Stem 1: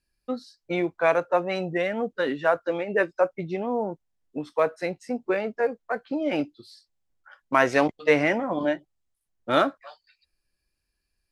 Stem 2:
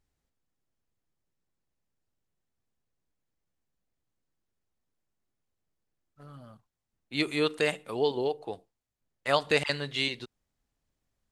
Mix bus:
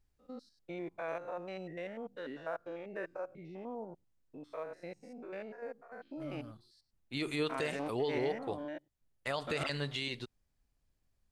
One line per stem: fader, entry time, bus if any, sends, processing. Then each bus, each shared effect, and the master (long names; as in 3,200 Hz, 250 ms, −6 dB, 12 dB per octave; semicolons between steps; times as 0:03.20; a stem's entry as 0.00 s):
−14.5 dB, 0.00 s, no send, spectrum averaged block by block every 100 ms
−3.0 dB, 0.00 s, no send, low-shelf EQ 110 Hz +9.5 dB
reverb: not used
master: brickwall limiter −24 dBFS, peak gain reduction 11 dB